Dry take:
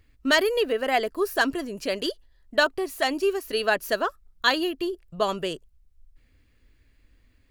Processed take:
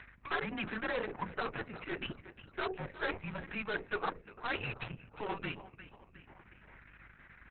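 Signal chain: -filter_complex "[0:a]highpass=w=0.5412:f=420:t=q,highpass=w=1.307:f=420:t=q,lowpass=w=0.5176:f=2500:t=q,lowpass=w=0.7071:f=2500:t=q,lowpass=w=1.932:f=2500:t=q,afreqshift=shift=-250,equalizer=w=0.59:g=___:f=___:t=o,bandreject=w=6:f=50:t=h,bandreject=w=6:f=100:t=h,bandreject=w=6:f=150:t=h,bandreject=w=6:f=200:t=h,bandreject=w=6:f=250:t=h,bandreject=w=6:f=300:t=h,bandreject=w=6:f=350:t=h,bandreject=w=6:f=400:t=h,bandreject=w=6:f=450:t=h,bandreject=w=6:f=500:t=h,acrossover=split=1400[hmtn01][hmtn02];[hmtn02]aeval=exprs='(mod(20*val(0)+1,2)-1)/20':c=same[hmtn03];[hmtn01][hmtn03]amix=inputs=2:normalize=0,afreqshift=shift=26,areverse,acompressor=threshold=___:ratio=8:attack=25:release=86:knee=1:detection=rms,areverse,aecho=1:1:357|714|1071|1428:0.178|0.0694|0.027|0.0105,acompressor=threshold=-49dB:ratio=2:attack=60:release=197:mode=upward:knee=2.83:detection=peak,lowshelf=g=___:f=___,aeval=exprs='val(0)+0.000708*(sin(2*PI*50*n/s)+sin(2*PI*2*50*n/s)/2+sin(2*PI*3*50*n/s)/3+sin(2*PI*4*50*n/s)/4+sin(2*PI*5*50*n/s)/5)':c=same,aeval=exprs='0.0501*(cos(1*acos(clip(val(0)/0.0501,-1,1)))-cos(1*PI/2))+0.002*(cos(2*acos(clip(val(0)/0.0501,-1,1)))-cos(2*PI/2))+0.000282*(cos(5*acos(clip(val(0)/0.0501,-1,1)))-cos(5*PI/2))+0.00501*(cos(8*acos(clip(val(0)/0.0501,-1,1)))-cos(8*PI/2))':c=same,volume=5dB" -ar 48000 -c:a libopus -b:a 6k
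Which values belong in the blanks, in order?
-5.5, 230, -35dB, -12, 490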